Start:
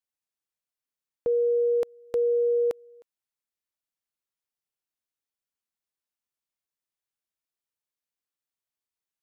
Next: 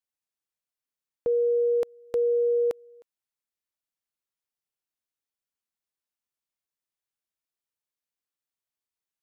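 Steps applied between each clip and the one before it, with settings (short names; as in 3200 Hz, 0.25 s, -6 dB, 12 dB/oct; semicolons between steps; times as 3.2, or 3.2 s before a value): nothing audible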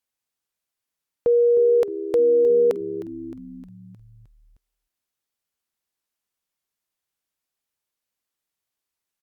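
frequency-shifting echo 0.309 s, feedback 57%, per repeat -73 Hz, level -14 dB; gain +6.5 dB; Opus 256 kbps 48000 Hz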